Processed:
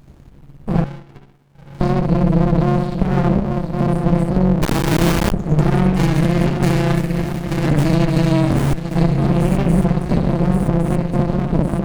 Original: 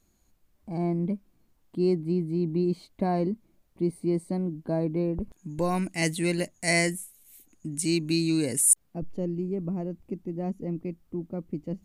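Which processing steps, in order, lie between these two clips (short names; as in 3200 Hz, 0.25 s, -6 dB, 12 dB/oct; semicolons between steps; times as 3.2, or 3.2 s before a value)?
9.25–9.67 resonant high shelf 1800 Hz +11.5 dB, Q 3; swung echo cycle 1.112 s, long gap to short 3:1, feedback 47%, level -18.5 dB; reverb, pre-delay 59 ms, DRR -6 dB; AM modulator 140 Hz, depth 60%; compressor 5:1, threshold -32 dBFS, peak gain reduction 16.5 dB; 0.84–1.81 HPF 810 Hz 24 dB/oct; 4.62–5.32 requantised 6-bit, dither triangular; maximiser +25 dB; running maximum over 65 samples; gain -2 dB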